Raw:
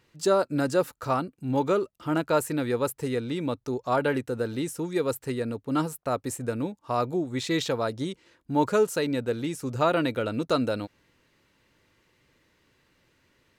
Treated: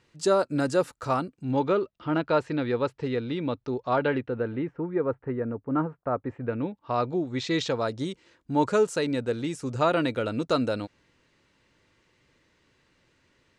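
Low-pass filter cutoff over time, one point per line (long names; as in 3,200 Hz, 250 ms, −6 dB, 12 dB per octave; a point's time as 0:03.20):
low-pass filter 24 dB per octave
0:01.25 9,800 Hz
0:01.70 4,400 Hz
0:04.00 4,400 Hz
0:04.83 1,700 Hz
0:06.14 1,700 Hz
0:06.94 4,600 Hz
0:08.07 8,800 Hz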